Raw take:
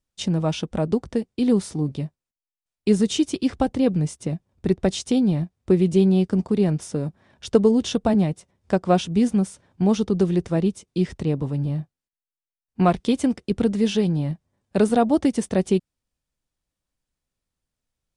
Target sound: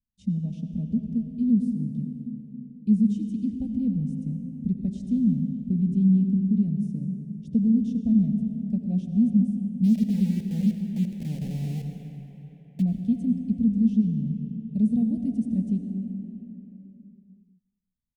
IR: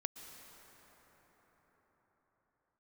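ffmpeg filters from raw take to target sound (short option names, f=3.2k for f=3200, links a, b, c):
-filter_complex "[0:a]firequalizer=gain_entry='entry(150,0);entry(230,8);entry(330,-21);entry(2300,-24);entry(10000,-19)':delay=0.05:min_phase=1,asplit=3[a][b][c];[a]afade=t=out:st=9.83:d=0.02[d];[b]aeval=exprs='val(0)*gte(abs(val(0)),0.0355)':c=same,afade=t=in:st=9.83:d=0.02,afade=t=out:st=12.81:d=0.02[e];[c]afade=t=in:st=12.81:d=0.02[f];[d][e][f]amix=inputs=3:normalize=0,asuperstop=centerf=1200:order=4:qfactor=0.78,asplit=2[g][h];[h]adelay=355.7,volume=-27dB,highshelf=f=4k:g=-8[i];[g][i]amix=inputs=2:normalize=0[j];[1:a]atrim=start_sample=2205,asetrate=66150,aresample=44100[k];[j][k]afir=irnorm=-1:irlink=0"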